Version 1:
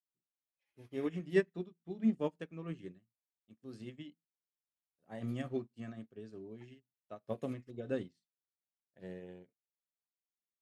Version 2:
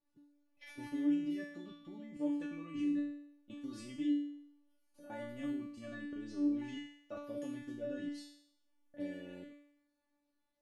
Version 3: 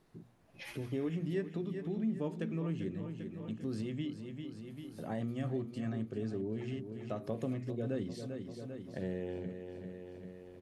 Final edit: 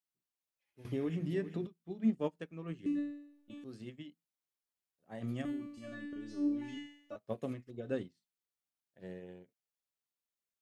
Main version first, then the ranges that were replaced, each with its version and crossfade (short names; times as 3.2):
1
0.85–1.67 from 3
2.86–3.64 from 2
5.45–7.16 from 2